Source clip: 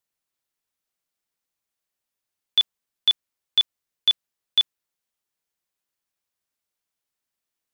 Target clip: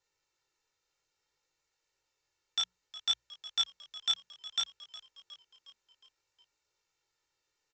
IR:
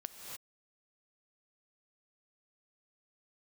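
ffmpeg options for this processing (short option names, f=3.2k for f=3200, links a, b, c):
-filter_complex "[0:a]bandreject=f=3.3k:w=13,aecho=1:1:2.2:0.93,aresample=16000,asoftclip=type=tanh:threshold=-29dB,aresample=44100,bandreject=f=60:t=h:w=6,bandreject=f=120:t=h:w=6,bandreject=f=180:t=h:w=6,asplit=6[a][b][c][d][e][f];[b]adelay=362,afreqshift=-78,volume=-16dB[g];[c]adelay=724,afreqshift=-156,volume=-21.4dB[h];[d]adelay=1086,afreqshift=-234,volume=-26.7dB[i];[e]adelay=1448,afreqshift=-312,volume=-32.1dB[j];[f]adelay=1810,afreqshift=-390,volume=-37.4dB[k];[a][g][h][i][j][k]amix=inputs=6:normalize=0,flanger=delay=19:depth=3.5:speed=0.6,volume=6.5dB"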